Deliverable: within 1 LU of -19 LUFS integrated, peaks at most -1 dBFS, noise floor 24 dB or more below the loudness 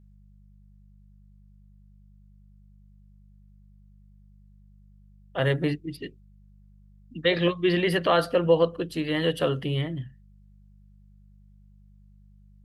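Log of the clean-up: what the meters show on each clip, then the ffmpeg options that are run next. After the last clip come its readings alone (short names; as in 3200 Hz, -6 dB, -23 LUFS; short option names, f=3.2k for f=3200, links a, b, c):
hum 50 Hz; harmonics up to 200 Hz; hum level -52 dBFS; loudness -25.5 LUFS; peak -9.0 dBFS; loudness target -19.0 LUFS
-> -af "bandreject=f=50:t=h:w=4,bandreject=f=100:t=h:w=4,bandreject=f=150:t=h:w=4,bandreject=f=200:t=h:w=4"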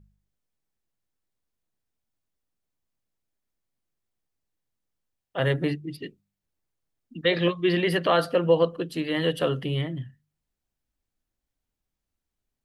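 hum none; loudness -25.0 LUFS; peak -9.0 dBFS; loudness target -19.0 LUFS
-> -af "volume=6dB"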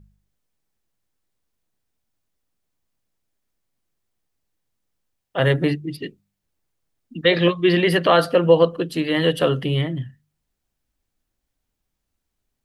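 loudness -19.0 LUFS; peak -3.0 dBFS; noise floor -80 dBFS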